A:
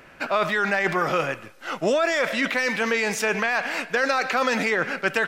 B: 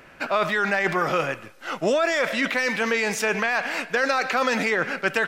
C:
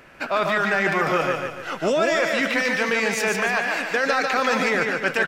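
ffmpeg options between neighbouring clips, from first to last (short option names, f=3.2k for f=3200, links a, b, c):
-af anull
-af "aecho=1:1:146|292|438|584|730:0.631|0.271|0.117|0.0502|0.0216"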